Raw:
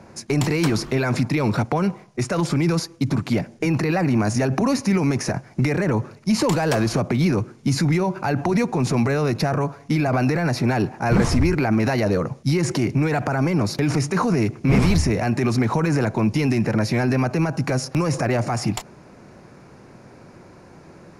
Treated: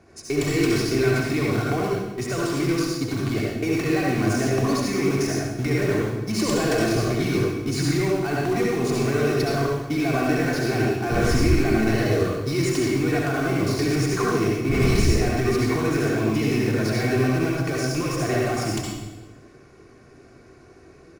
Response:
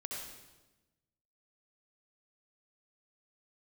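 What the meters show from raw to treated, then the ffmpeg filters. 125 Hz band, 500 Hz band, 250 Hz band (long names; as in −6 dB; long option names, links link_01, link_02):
−3.0 dB, +1.0 dB, −2.0 dB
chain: -filter_complex "[0:a]equalizer=frequency=860:width=2.7:gain=-7.5,aecho=1:1:2.7:0.59,bandreject=frequency=117.6:width_type=h:width=4,bandreject=frequency=235.2:width_type=h:width=4,bandreject=frequency=352.8:width_type=h:width=4,asplit=2[link_01][link_02];[link_02]acrusher=bits=3:mix=0:aa=0.000001,volume=-9dB[link_03];[link_01][link_03]amix=inputs=2:normalize=0[link_04];[1:a]atrim=start_sample=2205[link_05];[link_04][link_05]afir=irnorm=-1:irlink=0,volume=-3.5dB"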